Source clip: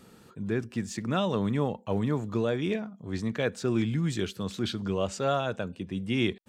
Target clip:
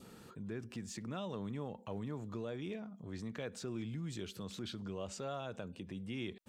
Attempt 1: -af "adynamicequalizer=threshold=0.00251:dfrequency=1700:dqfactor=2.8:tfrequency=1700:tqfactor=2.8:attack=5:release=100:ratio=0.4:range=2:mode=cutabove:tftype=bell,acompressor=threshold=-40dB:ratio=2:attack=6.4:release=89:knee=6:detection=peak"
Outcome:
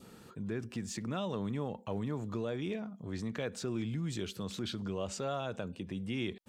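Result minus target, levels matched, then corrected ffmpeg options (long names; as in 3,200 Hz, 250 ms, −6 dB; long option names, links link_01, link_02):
downward compressor: peak gain reduction −5.5 dB
-af "adynamicequalizer=threshold=0.00251:dfrequency=1700:dqfactor=2.8:tfrequency=1700:tqfactor=2.8:attack=5:release=100:ratio=0.4:range=2:mode=cutabove:tftype=bell,acompressor=threshold=-51dB:ratio=2:attack=6.4:release=89:knee=6:detection=peak"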